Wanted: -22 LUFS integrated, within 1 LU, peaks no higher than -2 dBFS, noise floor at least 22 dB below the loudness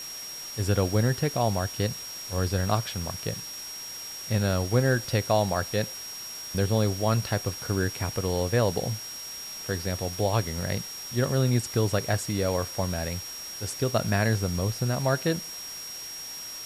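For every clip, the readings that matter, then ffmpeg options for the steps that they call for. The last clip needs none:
steady tone 5600 Hz; tone level -37 dBFS; noise floor -39 dBFS; noise floor target -50 dBFS; loudness -28.0 LUFS; peak -9.5 dBFS; loudness target -22.0 LUFS
-> -af "bandreject=f=5.6k:w=30"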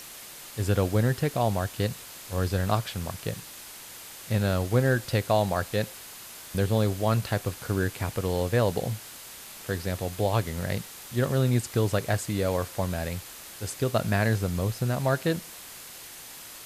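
steady tone none; noise floor -44 dBFS; noise floor target -50 dBFS
-> -af "afftdn=nr=6:nf=-44"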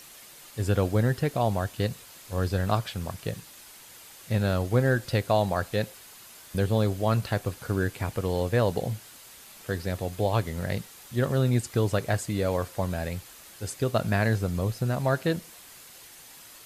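noise floor -49 dBFS; noise floor target -50 dBFS
-> -af "afftdn=nr=6:nf=-49"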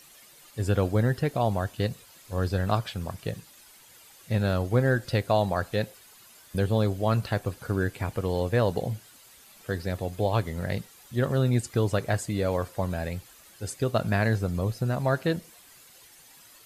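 noise floor -54 dBFS; loudness -28.0 LUFS; peak -9.5 dBFS; loudness target -22.0 LUFS
-> -af "volume=6dB"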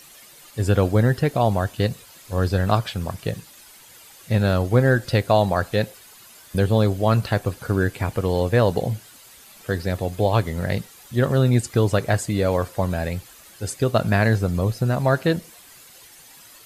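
loudness -22.0 LUFS; peak -3.5 dBFS; noise floor -48 dBFS

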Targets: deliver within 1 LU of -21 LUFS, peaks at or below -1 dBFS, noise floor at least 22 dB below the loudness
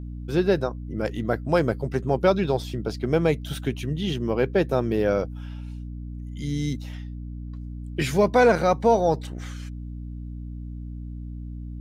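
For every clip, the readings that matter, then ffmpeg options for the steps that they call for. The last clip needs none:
hum 60 Hz; harmonics up to 300 Hz; hum level -32 dBFS; loudness -24.0 LUFS; peak -7.5 dBFS; loudness target -21.0 LUFS
-> -af "bandreject=f=60:t=h:w=4,bandreject=f=120:t=h:w=4,bandreject=f=180:t=h:w=4,bandreject=f=240:t=h:w=4,bandreject=f=300:t=h:w=4"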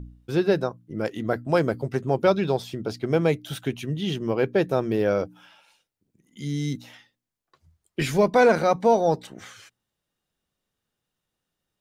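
hum none; loudness -24.0 LUFS; peak -7.5 dBFS; loudness target -21.0 LUFS
-> -af "volume=3dB"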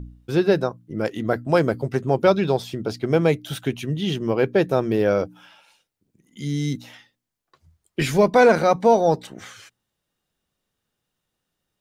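loudness -21.0 LUFS; peak -4.5 dBFS; noise floor -80 dBFS

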